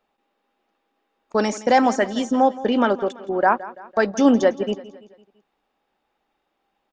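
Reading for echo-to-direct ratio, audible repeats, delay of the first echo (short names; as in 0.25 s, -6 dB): -16.5 dB, 3, 0.168 s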